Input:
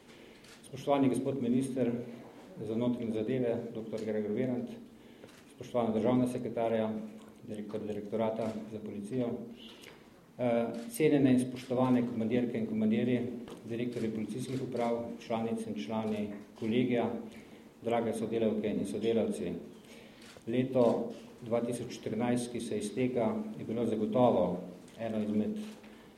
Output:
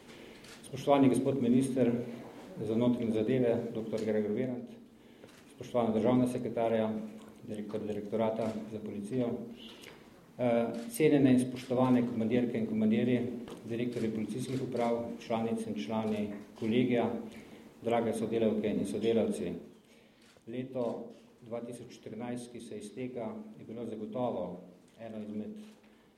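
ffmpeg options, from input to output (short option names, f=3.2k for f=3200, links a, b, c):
-af "volume=10dB,afade=t=out:st=4.17:d=0.44:silence=0.354813,afade=t=in:st=4.61:d=1.09:silence=0.446684,afade=t=out:st=19.38:d=0.46:silence=0.354813"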